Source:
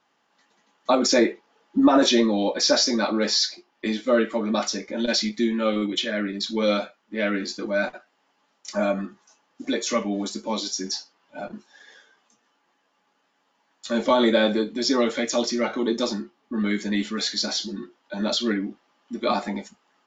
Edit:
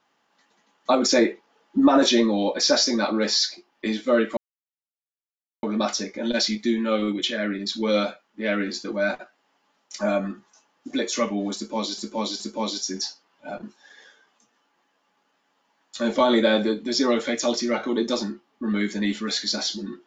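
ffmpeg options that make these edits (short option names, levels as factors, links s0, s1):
-filter_complex "[0:a]asplit=4[s0][s1][s2][s3];[s0]atrim=end=4.37,asetpts=PTS-STARTPTS,afade=t=out:st=4.366:d=0.004:c=hsin,apad=pad_dur=1.26[s4];[s1]atrim=start=4.37:end=10.722,asetpts=PTS-STARTPTS,afade=t=in:d=0.004:c=hsin[s5];[s2]atrim=start=10.298:end=10.722[s6];[s3]atrim=start=10.298[s7];[s4][s5]concat=n=2:v=0:a=1[s8];[s8][s6]acrossfade=d=0.004:c1=hsin:c2=hsin[s9];[s9][s7]acrossfade=d=0.004:c1=hsin:c2=hsin"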